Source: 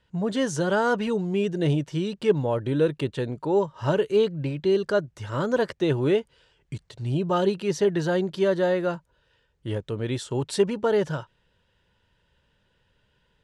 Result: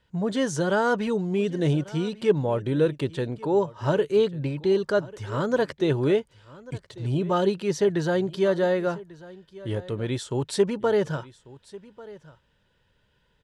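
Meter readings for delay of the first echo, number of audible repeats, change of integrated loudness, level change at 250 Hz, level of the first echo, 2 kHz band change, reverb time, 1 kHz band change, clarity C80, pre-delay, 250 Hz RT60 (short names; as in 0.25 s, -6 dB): 1.143 s, 1, 0.0 dB, 0.0 dB, -20.0 dB, 0.0 dB, none, 0.0 dB, none, none, none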